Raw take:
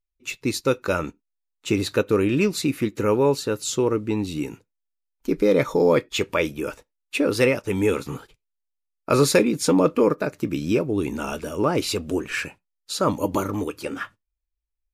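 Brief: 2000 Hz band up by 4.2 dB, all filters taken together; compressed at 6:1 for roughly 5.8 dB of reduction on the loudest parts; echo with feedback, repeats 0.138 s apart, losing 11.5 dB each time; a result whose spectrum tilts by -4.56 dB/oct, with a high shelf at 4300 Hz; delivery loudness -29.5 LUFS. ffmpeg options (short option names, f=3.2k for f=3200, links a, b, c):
-af "equalizer=f=2k:t=o:g=7.5,highshelf=f=4.3k:g=-8.5,acompressor=threshold=-19dB:ratio=6,aecho=1:1:138|276|414:0.266|0.0718|0.0194,volume=-3.5dB"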